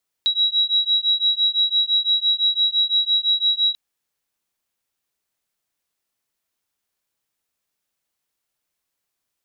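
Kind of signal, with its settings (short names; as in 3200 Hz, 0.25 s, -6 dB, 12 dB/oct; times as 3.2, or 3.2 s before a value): beating tones 3870 Hz, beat 5.9 Hz, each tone -19.5 dBFS 3.49 s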